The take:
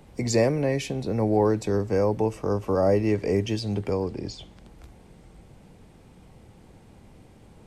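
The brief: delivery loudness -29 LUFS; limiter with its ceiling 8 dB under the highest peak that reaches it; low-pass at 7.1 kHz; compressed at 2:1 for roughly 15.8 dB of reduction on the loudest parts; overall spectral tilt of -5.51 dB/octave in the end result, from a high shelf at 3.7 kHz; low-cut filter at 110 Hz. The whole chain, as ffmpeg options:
-af "highpass=110,lowpass=7100,highshelf=f=3700:g=4.5,acompressor=threshold=0.00447:ratio=2,volume=6.31,alimiter=limit=0.133:level=0:latency=1"

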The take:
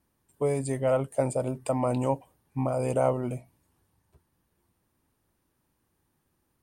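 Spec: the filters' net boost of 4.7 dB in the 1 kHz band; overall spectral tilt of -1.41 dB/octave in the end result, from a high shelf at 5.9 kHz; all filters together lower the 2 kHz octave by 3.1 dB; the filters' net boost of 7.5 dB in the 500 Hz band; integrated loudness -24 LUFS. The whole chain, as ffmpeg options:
-af "equalizer=f=500:t=o:g=8,equalizer=f=1000:t=o:g=4,equalizer=f=2000:t=o:g=-6,highshelf=f=5900:g=-6.5,volume=0.841"

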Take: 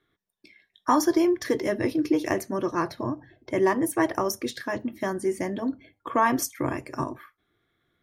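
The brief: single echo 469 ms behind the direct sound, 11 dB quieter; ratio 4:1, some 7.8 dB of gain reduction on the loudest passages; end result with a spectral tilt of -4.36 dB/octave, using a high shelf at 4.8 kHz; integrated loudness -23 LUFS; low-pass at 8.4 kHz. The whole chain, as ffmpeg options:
-af "lowpass=8400,highshelf=f=4800:g=6,acompressor=threshold=0.0501:ratio=4,aecho=1:1:469:0.282,volume=2.51"

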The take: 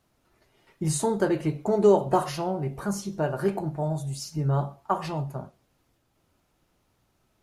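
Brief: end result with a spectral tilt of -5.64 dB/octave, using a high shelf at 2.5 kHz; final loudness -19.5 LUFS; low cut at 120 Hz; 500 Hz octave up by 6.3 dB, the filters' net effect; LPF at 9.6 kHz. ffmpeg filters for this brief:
-af "highpass=120,lowpass=9600,equalizer=f=500:t=o:g=8,highshelf=f=2500:g=6,volume=1.41"

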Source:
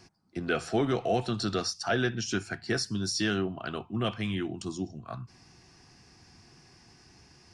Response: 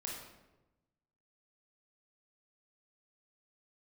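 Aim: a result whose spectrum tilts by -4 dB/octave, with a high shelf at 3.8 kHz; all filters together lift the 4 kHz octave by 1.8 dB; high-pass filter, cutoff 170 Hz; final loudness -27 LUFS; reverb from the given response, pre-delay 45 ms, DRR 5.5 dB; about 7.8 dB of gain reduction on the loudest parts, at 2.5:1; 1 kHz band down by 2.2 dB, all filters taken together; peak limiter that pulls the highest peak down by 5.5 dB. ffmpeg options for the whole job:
-filter_complex "[0:a]highpass=170,equalizer=f=1000:t=o:g=-3.5,highshelf=f=3800:g=-6,equalizer=f=4000:t=o:g=7,acompressor=threshold=0.0158:ratio=2.5,alimiter=level_in=1.78:limit=0.0631:level=0:latency=1,volume=0.562,asplit=2[s0][s1];[1:a]atrim=start_sample=2205,adelay=45[s2];[s1][s2]afir=irnorm=-1:irlink=0,volume=0.562[s3];[s0][s3]amix=inputs=2:normalize=0,volume=3.76"

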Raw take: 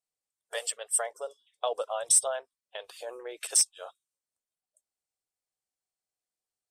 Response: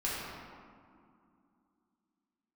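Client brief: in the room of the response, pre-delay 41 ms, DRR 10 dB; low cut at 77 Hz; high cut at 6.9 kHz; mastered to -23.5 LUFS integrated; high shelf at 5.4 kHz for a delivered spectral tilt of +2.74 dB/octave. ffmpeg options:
-filter_complex "[0:a]highpass=77,lowpass=6900,highshelf=f=5400:g=4.5,asplit=2[s0][s1];[1:a]atrim=start_sample=2205,adelay=41[s2];[s1][s2]afir=irnorm=-1:irlink=0,volume=0.15[s3];[s0][s3]amix=inputs=2:normalize=0,volume=2"

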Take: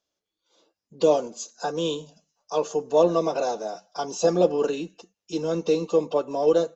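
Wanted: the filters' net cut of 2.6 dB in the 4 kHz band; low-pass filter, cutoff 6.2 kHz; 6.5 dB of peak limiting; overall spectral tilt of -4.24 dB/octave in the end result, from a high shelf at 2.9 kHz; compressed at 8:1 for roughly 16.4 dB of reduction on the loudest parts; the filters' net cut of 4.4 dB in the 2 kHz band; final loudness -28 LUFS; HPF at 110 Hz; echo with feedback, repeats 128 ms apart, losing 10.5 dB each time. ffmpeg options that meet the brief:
-af "highpass=110,lowpass=6200,equalizer=f=2000:t=o:g=-8,highshelf=f=2900:g=6,equalizer=f=4000:t=o:g=-5,acompressor=threshold=0.0251:ratio=8,alimiter=level_in=1.5:limit=0.0631:level=0:latency=1,volume=0.668,aecho=1:1:128|256|384:0.299|0.0896|0.0269,volume=3.16"

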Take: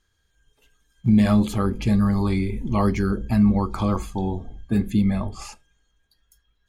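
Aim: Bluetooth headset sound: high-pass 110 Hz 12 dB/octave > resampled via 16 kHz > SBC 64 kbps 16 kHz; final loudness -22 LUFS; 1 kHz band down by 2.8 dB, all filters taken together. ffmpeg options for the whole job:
-af "highpass=110,equalizer=f=1000:t=o:g=-3.5,aresample=16000,aresample=44100,volume=1.12" -ar 16000 -c:a sbc -b:a 64k

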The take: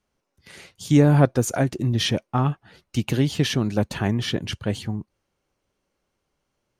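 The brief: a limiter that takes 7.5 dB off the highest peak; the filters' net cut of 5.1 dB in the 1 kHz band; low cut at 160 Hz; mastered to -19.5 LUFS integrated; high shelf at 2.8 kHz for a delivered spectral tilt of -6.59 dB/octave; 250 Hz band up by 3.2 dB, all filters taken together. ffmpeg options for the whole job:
-af "highpass=160,equalizer=f=250:t=o:g=5.5,equalizer=f=1000:t=o:g=-7,highshelf=f=2800:g=-7.5,volume=1.78,alimiter=limit=0.501:level=0:latency=1"

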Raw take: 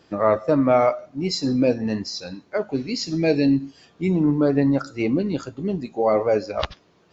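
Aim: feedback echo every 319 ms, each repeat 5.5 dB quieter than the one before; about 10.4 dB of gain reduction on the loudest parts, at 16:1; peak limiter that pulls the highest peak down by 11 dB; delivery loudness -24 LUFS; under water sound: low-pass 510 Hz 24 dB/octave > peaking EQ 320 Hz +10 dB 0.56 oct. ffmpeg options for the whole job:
-af "acompressor=threshold=0.0631:ratio=16,alimiter=limit=0.0891:level=0:latency=1,lowpass=f=510:w=0.5412,lowpass=f=510:w=1.3066,equalizer=f=320:t=o:w=0.56:g=10,aecho=1:1:319|638|957|1276|1595|1914|2233:0.531|0.281|0.149|0.079|0.0419|0.0222|0.0118,volume=1.19"

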